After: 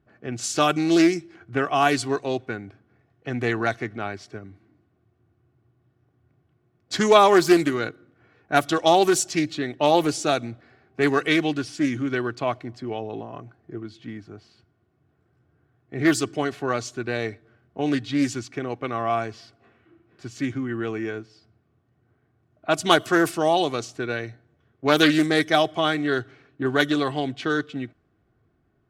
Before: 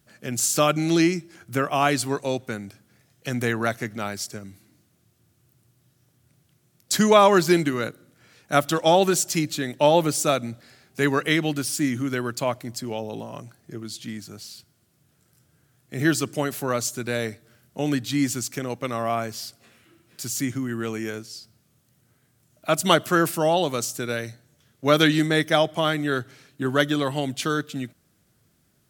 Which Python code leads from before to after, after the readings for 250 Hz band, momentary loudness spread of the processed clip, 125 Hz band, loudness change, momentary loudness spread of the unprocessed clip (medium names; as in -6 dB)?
+1.0 dB, 19 LU, -3.5 dB, +0.5 dB, 17 LU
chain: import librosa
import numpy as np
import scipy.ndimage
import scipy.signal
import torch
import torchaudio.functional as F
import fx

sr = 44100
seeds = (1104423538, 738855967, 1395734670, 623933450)

y = x + 0.45 * np.pad(x, (int(2.7 * sr / 1000.0), 0))[:len(x)]
y = fx.env_lowpass(y, sr, base_hz=1400.0, full_db=-14.0)
y = fx.doppler_dist(y, sr, depth_ms=0.15)